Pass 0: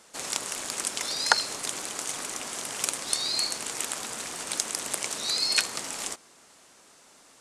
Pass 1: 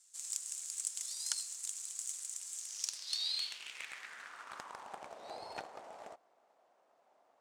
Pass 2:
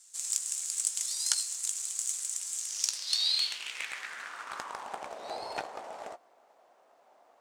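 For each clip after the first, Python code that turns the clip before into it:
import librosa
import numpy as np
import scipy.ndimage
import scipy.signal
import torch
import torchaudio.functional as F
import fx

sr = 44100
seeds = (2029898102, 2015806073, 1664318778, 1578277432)

y1 = np.maximum(x, 0.0)
y1 = fx.filter_sweep_bandpass(y1, sr, from_hz=7600.0, to_hz=690.0, start_s=2.54, end_s=5.13, q=3.1)
y1 = F.gain(torch.from_numpy(y1), 1.5).numpy()
y2 = fx.peak_eq(y1, sr, hz=120.0, db=-4.0, octaves=1.8)
y2 = fx.doubler(y2, sr, ms=17.0, db=-12)
y2 = F.gain(torch.from_numpy(y2), 8.0).numpy()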